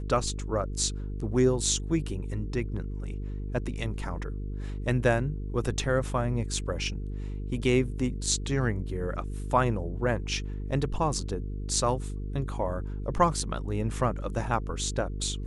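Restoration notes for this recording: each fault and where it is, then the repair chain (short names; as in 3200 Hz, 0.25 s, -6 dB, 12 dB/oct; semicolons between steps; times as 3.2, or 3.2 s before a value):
buzz 50 Hz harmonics 9 -34 dBFS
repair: de-hum 50 Hz, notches 9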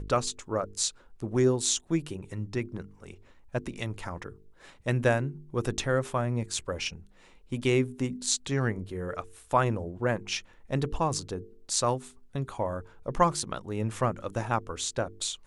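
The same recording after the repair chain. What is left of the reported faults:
none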